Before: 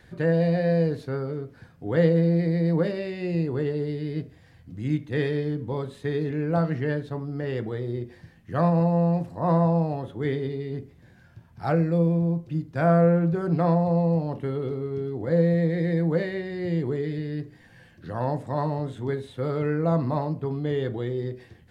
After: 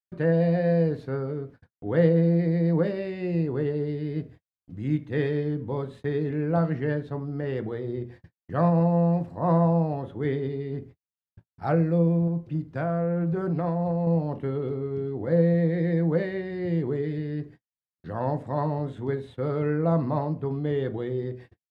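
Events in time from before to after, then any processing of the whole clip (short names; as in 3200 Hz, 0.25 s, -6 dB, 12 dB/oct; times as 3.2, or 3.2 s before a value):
12.27–14.07 compressor, threshold -22 dBFS
whole clip: notches 60/120 Hz; gate -44 dBFS, range -58 dB; high shelf 3900 Hz -11.5 dB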